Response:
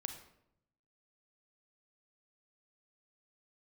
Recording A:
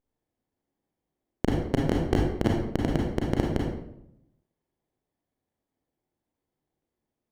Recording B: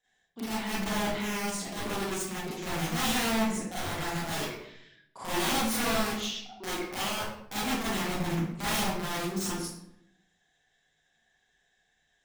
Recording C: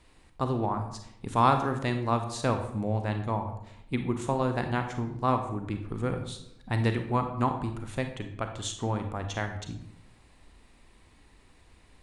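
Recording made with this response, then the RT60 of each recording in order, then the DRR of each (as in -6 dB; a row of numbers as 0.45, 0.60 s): C; 0.75, 0.75, 0.75 s; -1.5, -10.5, 6.0 dB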